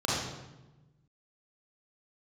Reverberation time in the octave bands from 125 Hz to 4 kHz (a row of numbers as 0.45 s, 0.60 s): 1.7 s, 1.5 s, 1.1 s, 1.0 s, 0.90 s, 0.80 s